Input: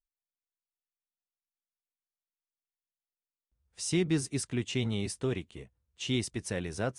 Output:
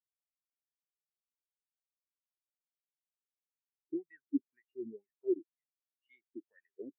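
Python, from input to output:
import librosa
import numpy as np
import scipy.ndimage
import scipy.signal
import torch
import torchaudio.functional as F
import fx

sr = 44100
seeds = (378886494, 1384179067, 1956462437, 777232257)

y = fx.wah_lfo(x, sr, hz=2.0, low_hz=300.0, high_hz=1900.0, q=4.7)
y = fx.spectral_expand(y, sr, expansion=2.5)
y = y * librosa.db_to_amplitude(7.0)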